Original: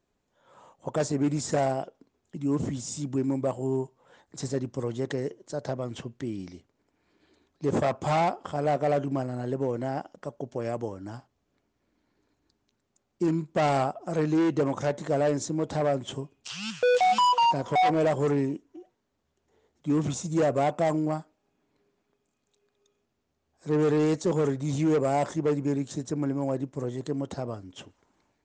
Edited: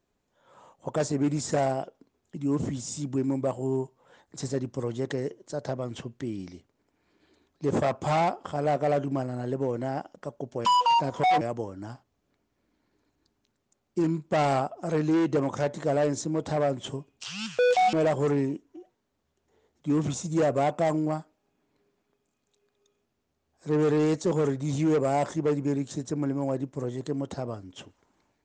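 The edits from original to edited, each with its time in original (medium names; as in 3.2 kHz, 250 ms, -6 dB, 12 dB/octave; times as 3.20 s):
17.17–17.93 s: move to 10.65 s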